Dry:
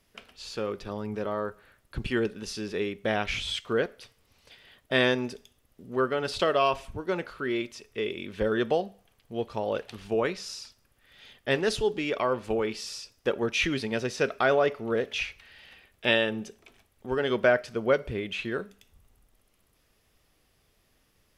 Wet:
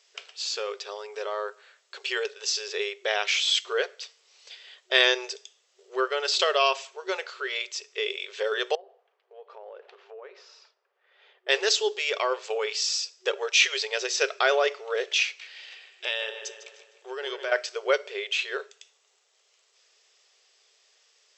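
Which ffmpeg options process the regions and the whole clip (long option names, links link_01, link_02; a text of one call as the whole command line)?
ffmpeg -i in.wav -filter_complex "[0:a]asettb=1/sr,asplit=3[link_01][link_02][link_03];[link_01]atrim=end=8.754[link_04];[link_02]atrim=start=8.75:end=11.49,asetpts=PTS-STARTPTS,afade=type=in:duration=0.004:curve=qsin,afade=type=out:start_time=2.736:duration=0.004:curve=qsin,lowpass=1200,acompressor=threshold=-38dB:ratio=12:attack=3.2:release=140:knee=1:detection=peak[link_05];[link_03]atrim=start=11.486[link_06];[link_04][link_05]acrossfade=duration=0.004:curve1=hsin:curve2=qsin[link_07];[link_07][link_06]acrossfade=duration=0.004:curve1=qsin:curve2=hsin,asettb=1/sr,asplit=3[link_08][link_09][link_10];[link_08]atrim=end=15.264[link_11];[link_09]atrim=start=15.26:end=17.52,asetpts=PTS-STARTPTS,afade=type=in:duration=0.004:curve=qsin,afade=type=out:start_time=2.256:duration=0.004:curve=qsin,acompressor=threshold=-32dB:ratio=3:attack=3.2:release=140:knee=1:detection=peak,asplit=2[link_12][link_13];[link_13]adelay=152,lowpass=frequency=4300:poles=1,volume=-9dB,asplit=2[link_14][link_15];[link_15]adelay=152,lowpass=frequency=4300:poles=1,volume=0.54,asplit=2[link_16][link_17];[link_17]adelay=152,lowpass=frequency=4300:poles=1,volume=0.54,asplit=2[link_18][link_19];[link_19]adelay=152,lowpass=frequency=4300:poles=1,volume=0.54,asplit=2[link_20][link_21];[link_21]adelay=152,lowpass=frequency=4300:poles=1,volume=0.54,asplit=2[link_22][link_23];[link_23]adelay=152,lowpass=frequency=4300:poles=1,volume=0.54[link_24];[link_12][link_14][link_16][link_18][link_20][link_22][link_24]amix=inputs=7:normalize=0,atrim=end_sample=99666[link_25];[link_10]atrim=start=17.516[link_26];[link_11][link_25]acrossfade=duration=0.004:curve1=hsin:curve2=qsin[link_27];[link_27][link_26]acrossfade=duration=0.004:curve1=qsin:curve2=hsin,equalizer=frequency=5300:width_type=o:width=2:gain=3.5,afftfilt=real='re*between(b*sr/4096,370,8000)':imag='im*between(b*sr/4096,370,8000)':win_size=4096:overlap=0.75,highshelf=frequency=2600:gain=11.5,volume=-1dB" out.wav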